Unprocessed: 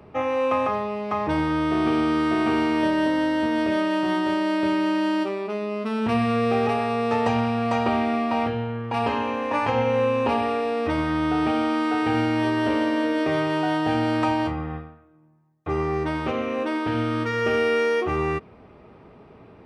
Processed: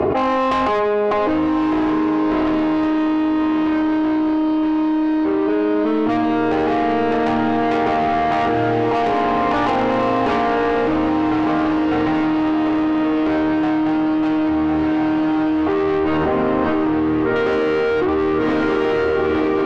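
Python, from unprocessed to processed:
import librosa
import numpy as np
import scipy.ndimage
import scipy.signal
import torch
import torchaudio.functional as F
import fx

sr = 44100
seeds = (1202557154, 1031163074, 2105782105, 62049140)

p1 = fx.hum_notches(x, sr, base_hz=60, count=5)
p2 = p1 + 0.72 * np.pad(p1, (int(2.8 * sr / 1000.0), 0))[:len(p1)]
p3 = fx.rider(p2, sr, range_db=3, speed_s=0.5)
p4 = p2 + (p3 * librosa.db_to_amplitude(-1.0))
p5 = fx.bandpass_q(p4, sr, hz=420.0, q=0.56)
p6 = 10.0 ** (-21.0 / 20.0) * np.tanh(p5 / 10.0 ** (-21.0 / 20.0))
p7 = fx.air_absorb(p6, sr, metres=440.0, at=(16.17, 17.36))
p8 = fx.echo_diffused(p7, sr, ms=1195, feedback_pct=58, wet_db=-6)
y = fx.env_flatten(p8, sr, amount_pct=100)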